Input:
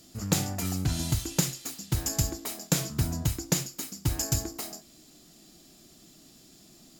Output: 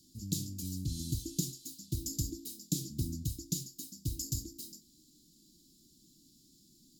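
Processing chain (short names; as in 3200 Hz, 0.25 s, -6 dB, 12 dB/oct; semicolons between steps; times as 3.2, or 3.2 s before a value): elliptic band-stop 310–3900 Hz, stop band 70 dB; 1.05–3.16 dynamic EQ 340 Hz, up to +6 dB, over -45 dBFS, Q 1.3; gain -7.5 dB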